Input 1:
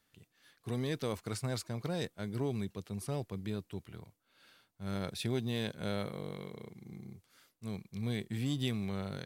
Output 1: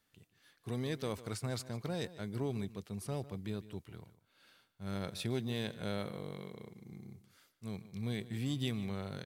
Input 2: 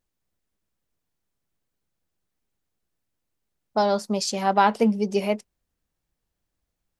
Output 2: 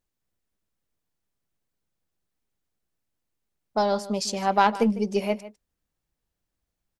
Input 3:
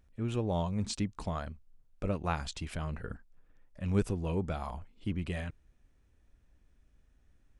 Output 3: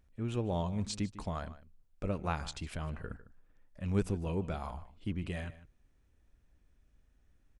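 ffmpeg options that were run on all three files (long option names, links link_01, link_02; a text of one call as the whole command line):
ffmpeg -i in.wav -filter_complex "[0:a]aeval=exprs='0.562*(cos(1*acos(clip(val(0)/0.562,-1,1)))-cos(1*PI/2))+0.0398*(cos(3*acos(clip(val(0)/0.562,-1,1)))-cos(3*PI/2))+0.0112*(cos(4*acos(clip(val(0)/0.562,-1,1)))-cos(4*PI/2))':channel_layout=same,asplit=2[link_01][link_02];[link_02]adelay=151.6,volume=-16dB,highshelf=frequency=4000:gain=-3.41[link_03];[link_01][link_03]amix=inputs=2:normalize=0" out.wav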